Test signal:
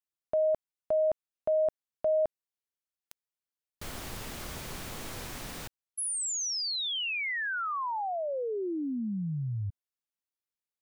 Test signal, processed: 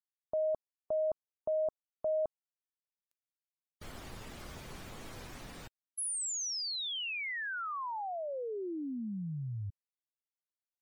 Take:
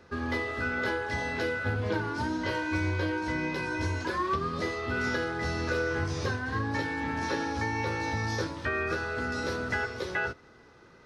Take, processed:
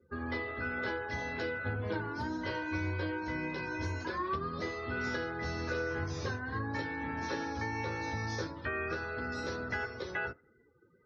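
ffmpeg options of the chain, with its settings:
ffmpeg -i in.wav -af "afftdn=noise_reduction=29:noise_floor=-48,highshelf=frequency=6300:gain=3,volume=-5.5dB" out.wav

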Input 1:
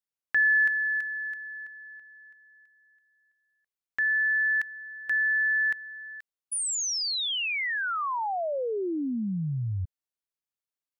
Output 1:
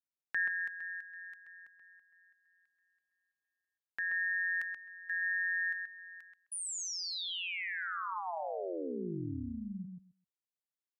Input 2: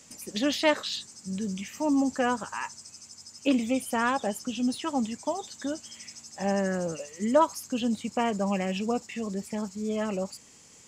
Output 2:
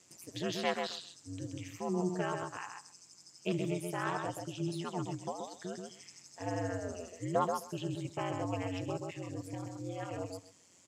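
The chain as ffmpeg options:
ffmpeg -i in.wav -filter_complex "[0:a]aeval=exprs='val(0)*sin(2*PI*89*n/s)':channel_layout=same,highpass=frequency=82:width=0.5412,highpass=frequency=82:width=1.3066,asplit=2[link_01][link_02];[link_02]adelay=130,lowpass=frequency=2600:poles=1,volume=-4dB,asplit=2[link_03][link_04];[link_04]adelay=130,lowpass=frequency=2600:poles=1,volume=0.15,asplit=2[link_05][link_06];[link_06]adelay=130,lowpass=frequency=2600:poles=1,volume=0.15[link_07];[link_01][link_03][link_05][link_07]amix=inputs=4:normalize=0,volume=-7dB" out.wav

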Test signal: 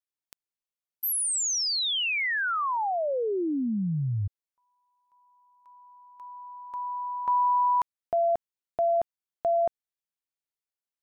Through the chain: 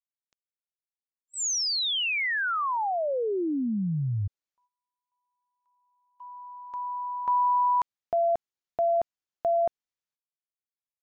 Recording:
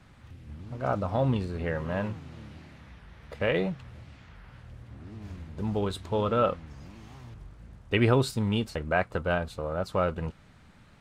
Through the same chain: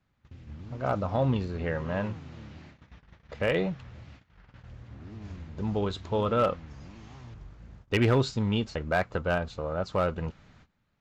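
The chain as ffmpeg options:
ffmpeg -i in.wav -af "aresample=16000,aresample=44100,agate=range=-19dB:threshold=-45dB:ratio=16:release=364:detection=rms,volume=17dB,asoftclip=hard,volume=-17dB" out.wav

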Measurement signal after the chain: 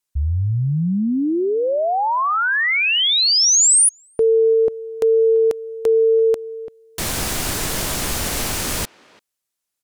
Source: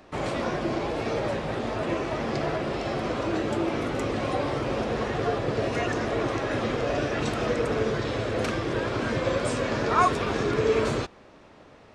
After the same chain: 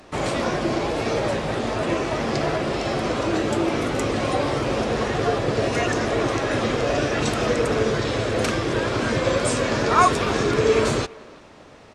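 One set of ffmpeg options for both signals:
ffmpeg -i in.wav -filter_complex "[0:a]equalizer=frequency=8900:width_type=o:width=1.8:gain=6.5,asplit=2[link_01][link_02];[link_02]adelay=340,highpass=300,lowpass=3400,asoftclip=type=hard:threshold=-16dB,volume=-22dB[link_03];[link_01][link_03]amix=inputs=2:normalize=0,volume=4.5dB" out.wav

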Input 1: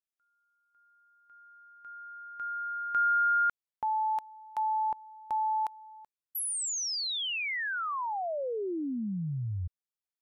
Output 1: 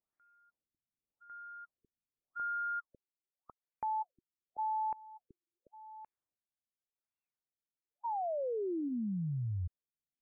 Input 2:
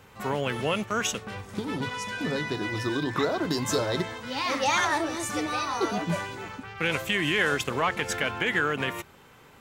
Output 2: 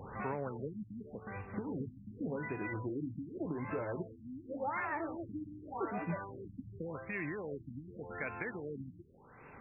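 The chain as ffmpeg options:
ffmpeg -i in.wav -af "acompressor=threshold=-44dB:ratio=3:attack=1.6:release=717:detection=rms,afftfilt=real='re*lt(b*sr/1024,300*pow(2800/300,0.5+0.5*sin(2*PI*0.87*pts/sr)))':imag='im*lt(b*sr/1024,300*pow(2800/300,0.5+0.5*sin(2*PI*0.87*pts/sr)))':win_size=1024:overlap=0.75,volume=7dB" out.wav

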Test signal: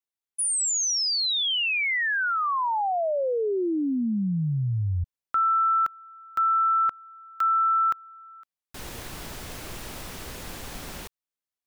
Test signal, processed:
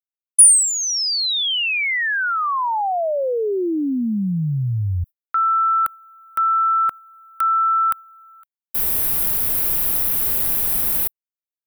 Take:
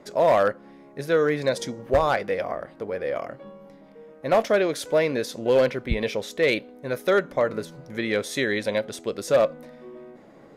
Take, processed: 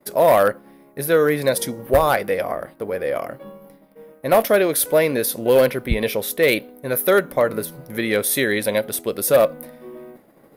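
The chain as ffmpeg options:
ffmpeg -i in.wav -af "agate=range=-33dB:threshold=-44dB:ratio=3:release=102:detection=peak,aexciter=amount=7.8:drive=8.3:freq=9700,volume=4.5dB" out.wav

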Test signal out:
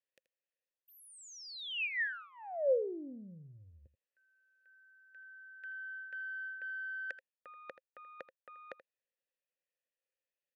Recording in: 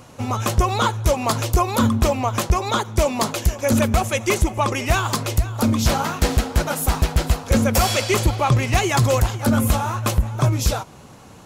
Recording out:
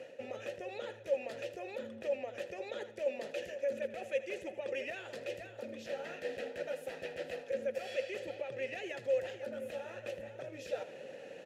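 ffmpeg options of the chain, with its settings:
ffmpeg -i in.wav -filter_complex "[0:a]highpass=120,highshelf=frequency=8600:gain=4.5,alimiter=limit=-15.5dB:level=0:latency=1:release=227,areverse,acompressor=threshold=-33dB:ratio=12,areverse,aeval=exprs='(tanh(11.2*val(0)+0.15)-tanh(0.15))/11.2':channel_layout=same,asplit=3[link_01][link_02][link_03];[link_01]bandpass=frequency=530:width_type=q:width=8,volume=0dB[link_04];[link_02]bandpass=frequency=1840:width_type=q:width=8,volume=-6dB[link_05];[link_03]bandpass=frequency=2480:width_type=q:width=8,volume=-9dB[link_06];[link_04][link_05][link_06]amix=inputs=3:normalize=0,aecho=1:1:81:0.188,volume=9dB" out.wav

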